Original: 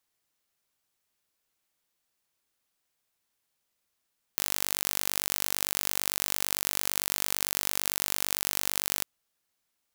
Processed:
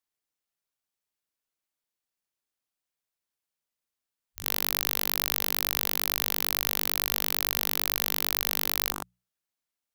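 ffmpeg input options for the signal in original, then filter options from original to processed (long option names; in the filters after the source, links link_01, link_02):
-f lavfi -i "aevalsrc='0.841*eq(mod(n,902),0)':duration=4.66:sample_rate=44100"
-af "afwtdn=0.0141,bandreject=frequency=60:width_type=h:width=6,bandreject=frequency=120:width_type=h:width=6,bandreject=frequency=180:width_type=h:width=6,acontrast=87"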